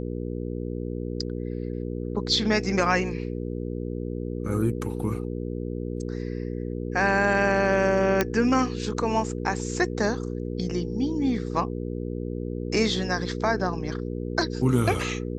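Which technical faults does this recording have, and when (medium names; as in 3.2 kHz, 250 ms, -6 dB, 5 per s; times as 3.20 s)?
hum 60 Hz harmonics 8 -31 dBFS
8.21 s: pop -7 dBFS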